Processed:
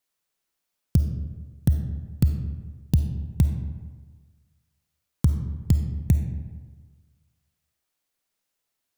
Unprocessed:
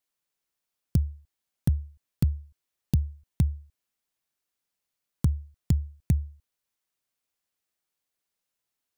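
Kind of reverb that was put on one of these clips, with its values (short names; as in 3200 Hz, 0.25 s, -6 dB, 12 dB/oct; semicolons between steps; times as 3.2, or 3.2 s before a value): digital reverb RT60 1.4 s, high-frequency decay 0.55×, pre-delay 10 ms, DRR 6 dB; gain +3.5 dB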